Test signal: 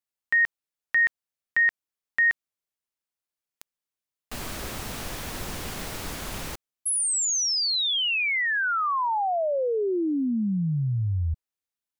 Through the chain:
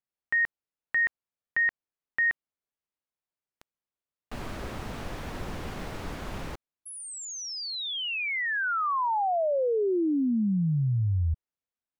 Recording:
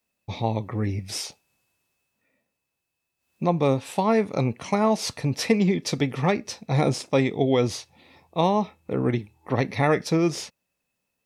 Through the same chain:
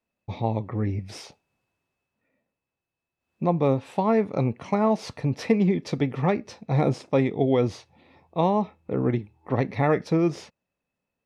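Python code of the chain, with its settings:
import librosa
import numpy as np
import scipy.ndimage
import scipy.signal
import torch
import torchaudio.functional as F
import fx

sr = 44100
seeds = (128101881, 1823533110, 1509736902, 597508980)

y = fx.lowpass(x, sr, hz=1500.0, slope=6)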